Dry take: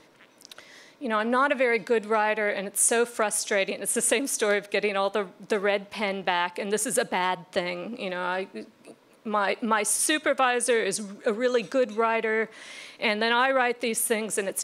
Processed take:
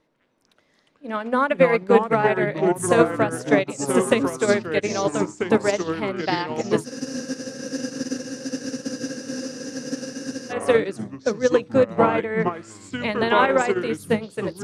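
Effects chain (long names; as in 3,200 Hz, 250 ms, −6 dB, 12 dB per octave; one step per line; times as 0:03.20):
spectral tilt −2 dB per octave
mains-hum notches 60/120/180/240/300/360/420/480 Hz
delay with pitch and tempo change per echo 221 ms, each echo −4 semitones, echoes 3
frozen spectrum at 0:06.88, 3.62 s
expander for the loud parts 2.5 to 1, over −31 dBFS
level +7 dB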